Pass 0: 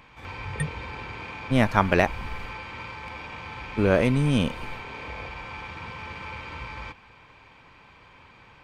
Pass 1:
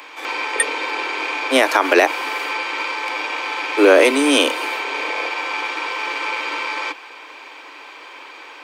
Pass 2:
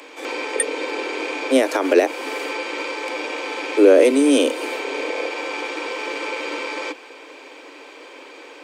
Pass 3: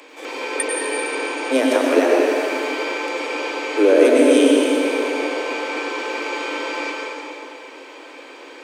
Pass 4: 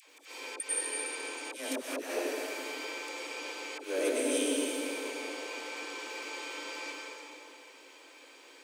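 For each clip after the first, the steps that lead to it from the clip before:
steep high-pass 280 Hz 96 dB/octave; treble shelf 3.7 kHz +8 dB; loudness maximiser +14 dB; trim -1 dB
graphic EQ 250/500/1000/8000 Hz +10/+10/-4/+7 dB; in parallel at +0.5 dB: compression, threshold -17 dBFS, peak gain reduction 18 dB; on the sum: trim -11 dB
plate-style reverb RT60 2.8 s, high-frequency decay 0.75×, pre-delay 85 ms, DRR -3 dB; trim -3 dB
slow attack 146 ms; pre-emphasis filter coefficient 0.8; phase dispersion lows, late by 73 ms, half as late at 700 Hz; trim -4.5 dB

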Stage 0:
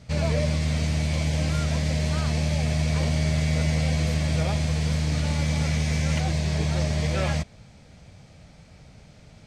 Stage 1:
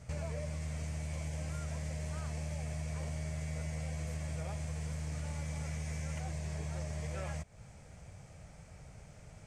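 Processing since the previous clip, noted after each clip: graphic EQ 250/4000/8000 Hz -8/-12/+6 dB; compression 4:1, threshold -36 dBFS, peak gain reduction 12.5 dB; trim -2 dB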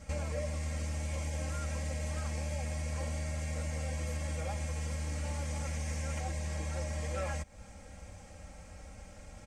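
comb 3.7 ms, depth 98%; trim +2 dB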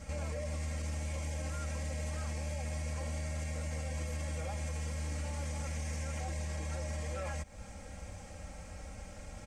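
peak limiter -33.5 dBFS, peak gain reduction 8 dB; trim +3 dB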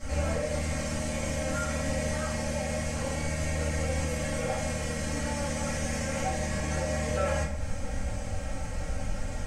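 simulated room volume 88 m³, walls mixed, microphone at 2.4 m; trim +1 dB

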